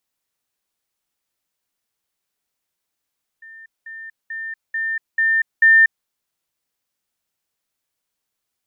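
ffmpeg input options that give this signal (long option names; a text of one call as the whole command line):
ffmpeg -f lavfi -i "aevalsrc='pow(10,(-38+6*floor(t/0.44))/20)*sin(2*PI*1800*t)*clip(min(mod(t,0.44),0.24-mod(t,0.44))/0.005,0,1)':duration=2.64:sample_rate=44100" out.wav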